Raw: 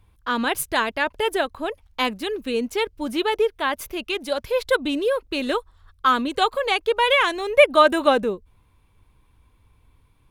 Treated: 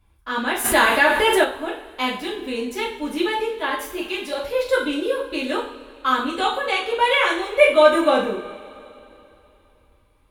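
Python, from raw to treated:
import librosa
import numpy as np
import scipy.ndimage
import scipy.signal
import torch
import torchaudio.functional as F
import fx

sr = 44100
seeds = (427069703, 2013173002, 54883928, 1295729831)

y = fx.hum_notches(x, sr, base_hz=60, count=4)
y = fx.rev_double_slope(y, sr, seeds[0], early_s=0.46, late_s=3.1, knee_db=-21, drr_db=-6.0)
y = fx.env_flatten(y, sr, amount_pct=50, at=(0.64, 1.43), fade=0.02)
y = y * 10.0 ** (-6.5 / 20.0)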